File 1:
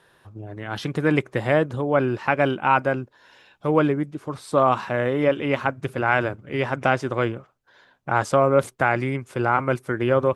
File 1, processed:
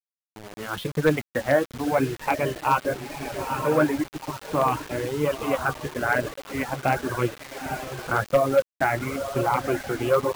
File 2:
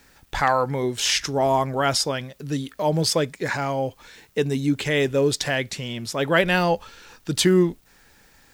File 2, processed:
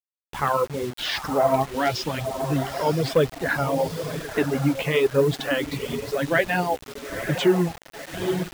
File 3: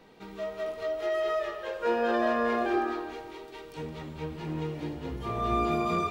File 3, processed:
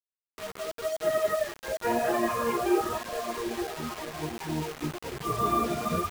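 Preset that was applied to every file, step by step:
drifting ripple filter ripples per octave 0.7, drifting +0.42 Hz, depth 8 dB; on a send: echo that smears into a reverb 943 ms, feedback 46%, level -7 dB; on the sum: level rider gain up to 7.5 dB; in parallel at -9 dB: Schmitt trigger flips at -16.5 dBFS; on the sum: high-pass 87 Hz 6 dB/octave; flange 0.95 Hz, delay 5.9 ms, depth 9.8 ms, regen +43%; low-pass 3.1 kHz 12 dB/octave; wavefolder -6.5 dBFS; reverb removal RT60 1.2 s; bit crusher 6-bit; trim -2.5 dB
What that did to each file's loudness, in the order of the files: -3.0 LU, -1.5 LU, +1.0 LU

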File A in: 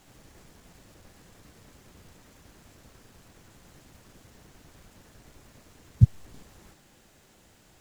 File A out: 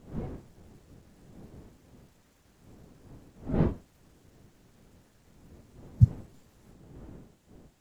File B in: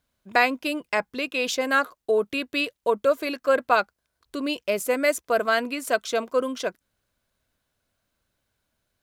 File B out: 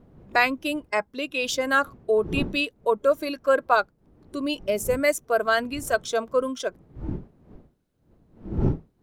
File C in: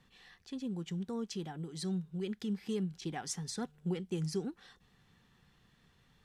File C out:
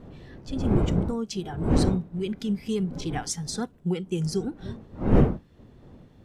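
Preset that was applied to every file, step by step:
wind noise 250 Hz -36 dBFS; spectral noise reduction 8 dB; peak normalisation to -6 dBFS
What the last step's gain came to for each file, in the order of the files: -1.5 dB, +0.5 dB, +8.5 dB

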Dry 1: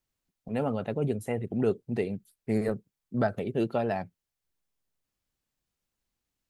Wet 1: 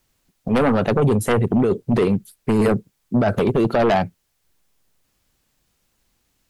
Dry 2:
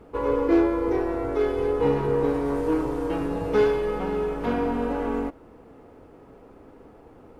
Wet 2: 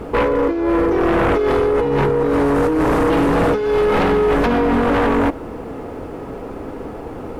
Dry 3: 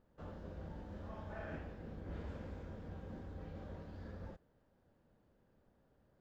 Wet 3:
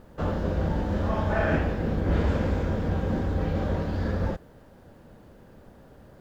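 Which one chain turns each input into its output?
compressor with a negative ratio -28 dBFS, ratio -1; sine folder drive 10 dB, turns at -14 dBFS; peak normalisation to -12 dBFS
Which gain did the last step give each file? +2.0 dB, +2.0 dB, +8.0 dB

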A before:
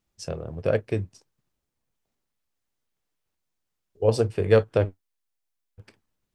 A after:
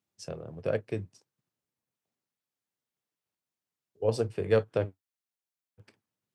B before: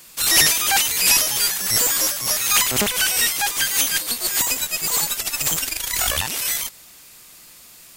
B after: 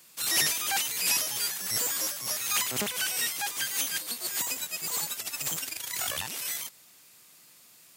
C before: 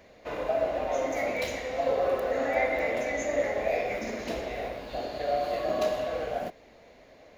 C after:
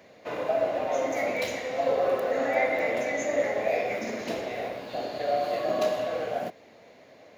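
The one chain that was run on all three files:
high-pass 100 Hz 24 dB/octave; peak normalisation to -12 dBFS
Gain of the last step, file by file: -6.0 dB, -10.5 dB, +1.5 dB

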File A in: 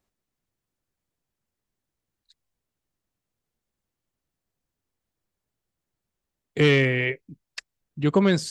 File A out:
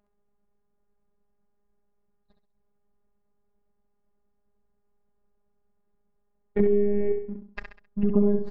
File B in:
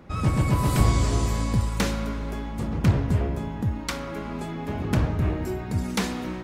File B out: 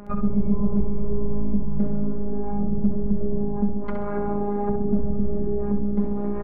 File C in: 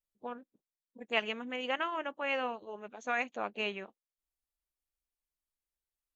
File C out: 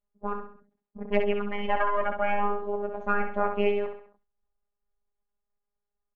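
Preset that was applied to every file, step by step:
partial rectifier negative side -7 dB; band-stop 360 Hz, Q 12; level-controlled noise filter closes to 1.1 kHz, open at -22.5 dBFS; treble shelf 2.5 kHz -8.5 dB; compression 12:1, threshold -24 dBFS; low-pass that closes with the level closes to 410 Hz, closed at -28.5 dBFS; robot voice 204 Hz; saturation -21.5 dBFS; feedback delay 66 ms, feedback 38%, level -7 dB; decay stretcher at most 120 dB/s; peak normalisation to -9 dBFS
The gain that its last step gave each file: +13.0 dB, +13.0 dB, +15.5 dB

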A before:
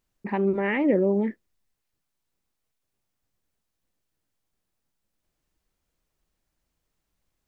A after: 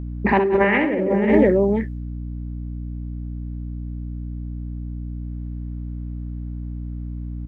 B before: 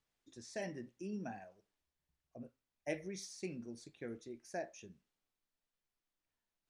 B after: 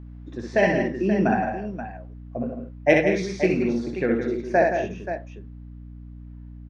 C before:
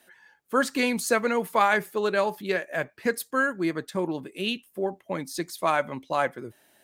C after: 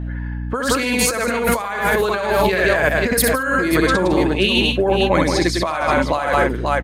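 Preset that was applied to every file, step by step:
level-controlled noise filter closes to 1.5 kHz, open at -25 dBFS; bass shelf 310 Hz -6 dB; on a send: multi-tap echo 60/64/75/169/216/530 ms -18.5/-3/-19/-7.5/-13/-10.5 dB; on the sum: hum 60 Hz, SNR 15 dB; compressor with a negative ratio -30 dBFS, ratio -1; peak normalisation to -3 dBFS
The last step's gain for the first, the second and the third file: +13.5 dB, +23.5 dB, +12.5 dB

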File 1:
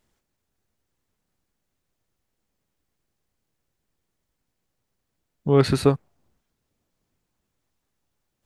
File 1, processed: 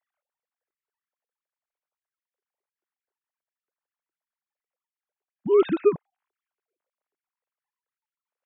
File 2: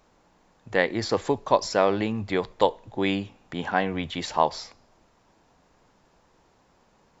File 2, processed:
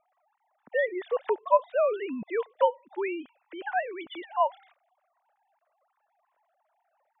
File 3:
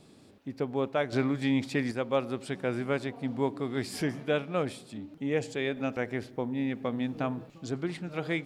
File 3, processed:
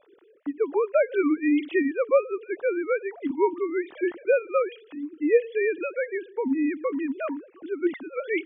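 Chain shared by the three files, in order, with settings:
formants replaced by sine waves; level-controlled noise filter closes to 2.2 kHz, open at -22 dBFS; peak normalisation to -9 dBFS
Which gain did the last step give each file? -1.5 dB, -3.0 dB, +5.5 dB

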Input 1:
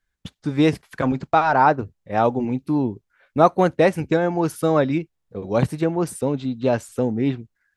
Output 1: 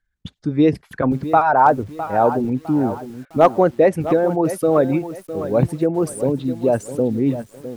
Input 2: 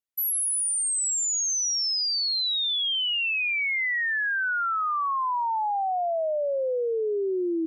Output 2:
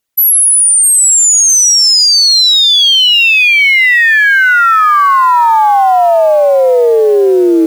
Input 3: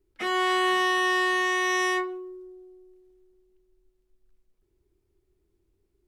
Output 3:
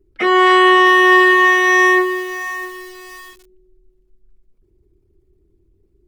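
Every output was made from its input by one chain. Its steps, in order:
resonances exaggerated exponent 1.5; overload inside the chain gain 5.5 dB; bit-crushed delay 657 ms, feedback 35%, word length 7-bit, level -12 dB; peak normalisation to -2 dBFS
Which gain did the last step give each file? +2.5 dB, +18.5 dB, +13.5 dB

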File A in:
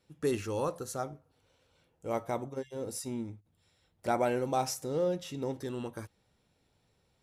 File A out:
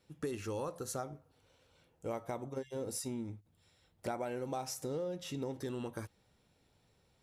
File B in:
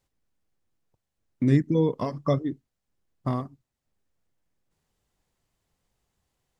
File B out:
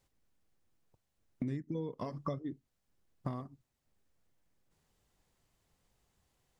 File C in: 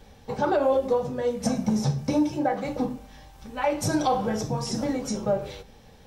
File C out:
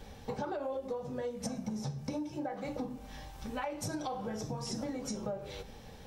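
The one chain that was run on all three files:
compression 8:1, threshold -36 dBFS; trim +1 dB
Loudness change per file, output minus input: -6.0 LU, -14.5 LU, -13.0 LU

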